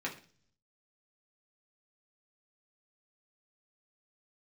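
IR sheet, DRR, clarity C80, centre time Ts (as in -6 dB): -3.5 dB, 16.5 dB, 15 ms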